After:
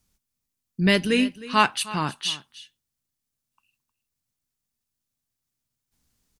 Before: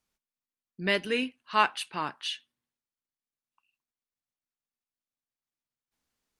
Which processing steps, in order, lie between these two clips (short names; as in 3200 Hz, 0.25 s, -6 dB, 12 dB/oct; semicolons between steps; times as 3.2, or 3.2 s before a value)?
tone controls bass +14 dB, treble +8 dB; echo 0.311 s -17.5 dB; gain +4 dB